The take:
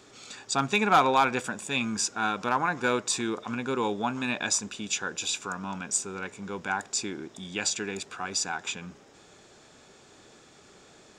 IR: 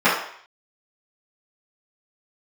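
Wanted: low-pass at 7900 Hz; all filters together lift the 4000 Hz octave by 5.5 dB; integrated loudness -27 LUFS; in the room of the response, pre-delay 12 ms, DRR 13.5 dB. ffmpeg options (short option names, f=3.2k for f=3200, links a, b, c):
-filter_complex "[0:a]lowpass=7.9k,equalizer=f=4k:t=o:g=7,asplit=2[a][b];[1:a]atrim=start_sample=2205,adelay=12[c];[b][c]afir=irnorm=-1:irlink=0,volume=-36.5dB[d];[a][d]amix=inputs=2:normalize=0"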